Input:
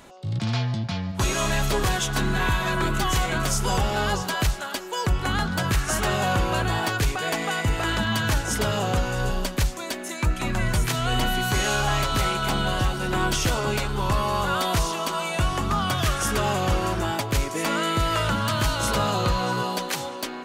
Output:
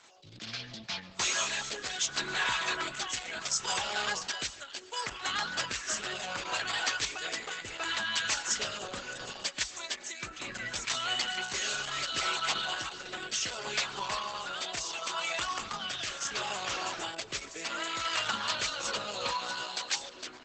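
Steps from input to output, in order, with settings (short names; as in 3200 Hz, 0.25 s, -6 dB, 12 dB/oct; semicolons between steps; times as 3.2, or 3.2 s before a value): weighting filter ITU-R 468; reverb removal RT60 0.52 s; high shelf 4100 Hz -8 dB; 3.32–3.81 notches 50/100/150/200/250/300/350/400/450/500 Hz; rotary speaker horn 0.7 Hz; 18.52–19.4 small resonant body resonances 520/900/2500 Hz, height 7 dB, ringing for 25 ms; flange 0.4 Hz, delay 2.1 ms, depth 3.7 ms, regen +76%; 6.98–7.76 requantised 12-bit, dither none; thinning echo 0.14 s, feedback 51%, high-pass 910 Hz, level -21 dB; on a send at -20 dB: reverb RT60 0.90 s, pre-delay 97 ms; on the sum: Opus 10 kbps 48000 Hz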